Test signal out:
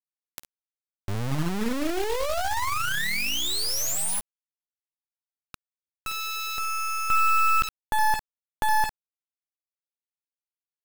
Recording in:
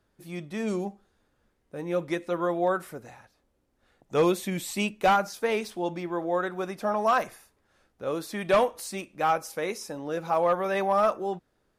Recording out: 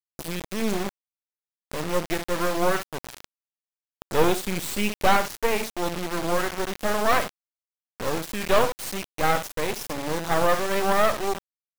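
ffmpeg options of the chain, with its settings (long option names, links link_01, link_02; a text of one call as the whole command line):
ffmpeg -i in.wav -af "acompressor=mode=upward:threshold=-31dB:ratio=2.5,aecho=1:1:13|53|67:0.15|0.15|0.211,acrusher=bits=3:dc=4:mix=0:aa=0.000001,volume=6dB" out.wav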